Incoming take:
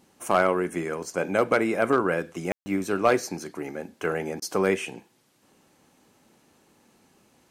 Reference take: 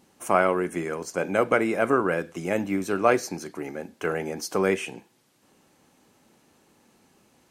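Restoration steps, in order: clip repair -11 dBFS; room tone fill 2.52–2.66; interpolate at 4.4, 19 ms

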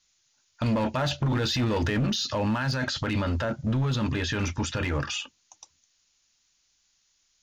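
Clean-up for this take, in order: clip repair -21 dBFS; expander -62 dBFS, range -21 dB

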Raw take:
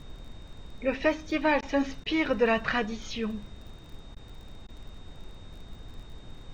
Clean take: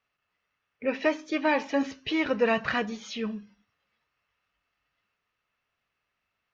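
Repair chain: de-click; notch 3700 Hz, Q 30; interpolate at 1.61/2.04/4.15/4.67, 14 ms; noise print and reduce 30 dB

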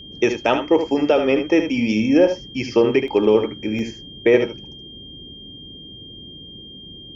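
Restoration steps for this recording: notch 3200 Hz, Q 30; interpolate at 3.08/3.79, 1.3 ms; noise print and reduce 23 dB; inverse comb 75 ms -8 dB

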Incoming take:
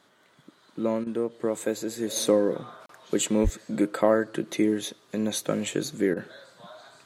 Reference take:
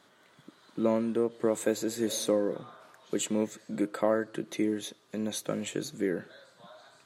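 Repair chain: de-plosive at 3.43; interpolate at 2.86, 33 ms; interpolate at 1.04/6.14, 25 ms; gain 0 dB, from 2.16 s -5.5 dB

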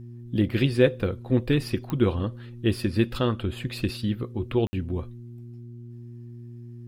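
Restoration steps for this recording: de-click; de-hum 119 Hz, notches 3; room tone fill 4.67–4.73

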